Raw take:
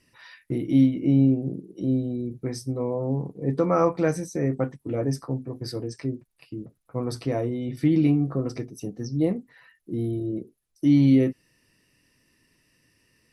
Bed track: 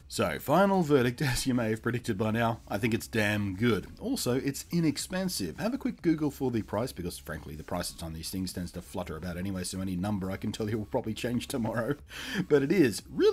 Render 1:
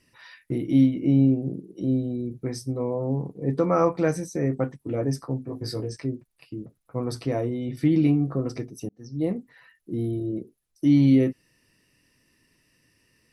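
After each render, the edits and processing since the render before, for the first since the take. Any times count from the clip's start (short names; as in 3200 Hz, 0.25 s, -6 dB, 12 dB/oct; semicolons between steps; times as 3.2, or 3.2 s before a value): 5.47–5.97 doubler 19 ms -3.5 dB; 8.89–9.38 fade in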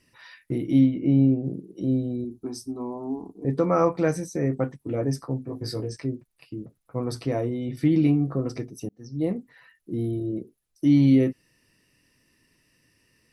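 0.79–1.44 air absorption 110 m; 2.24–3.45 fixed phaser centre 530 Hz, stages 6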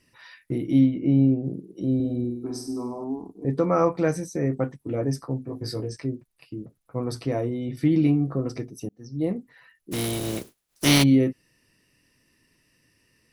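1.95–3.04 flutter echo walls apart 8.5 m, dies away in 0.68 s; 9.91–11.02 spectral contrast lowered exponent 0.4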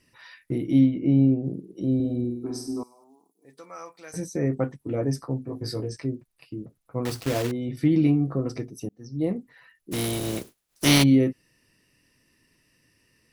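2.83–4.14 differentiator; 7.05–7.53 block floating point 3-bit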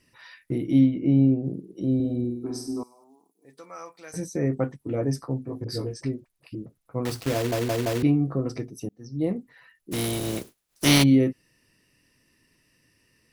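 5.64–6.55 dispersion highs, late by 45 ms, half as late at 550 Hz; 7.35 stutter in place 0.17 s, 4 plays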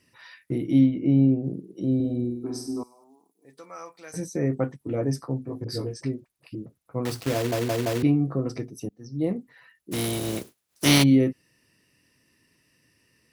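HPF 61 Hz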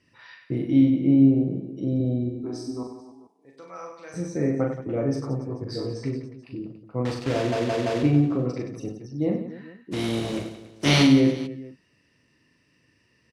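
air absorption 95 m; reverse bouncing-ball echo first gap 40 ms, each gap 1.4×, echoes 5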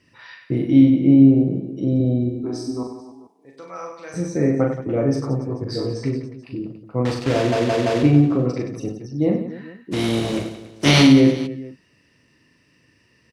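gain +5.5 dB; limiter -3 dBFS, peak gain reduction 2 dB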